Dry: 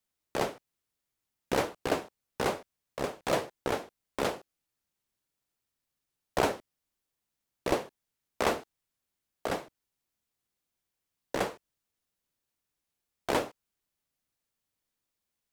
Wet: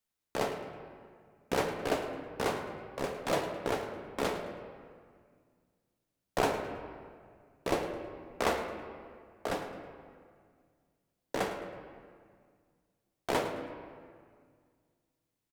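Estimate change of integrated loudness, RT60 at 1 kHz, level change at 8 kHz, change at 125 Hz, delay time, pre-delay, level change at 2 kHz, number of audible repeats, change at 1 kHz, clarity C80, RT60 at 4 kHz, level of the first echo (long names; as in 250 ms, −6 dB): −2.0 dB, 1.9 s, −2.5 dB, −0.5 dB, 107 ms, 4 ms, −1.0 dB, 1, −1.0 dB, 6.5 dB, 1.3 s, −13.0 dB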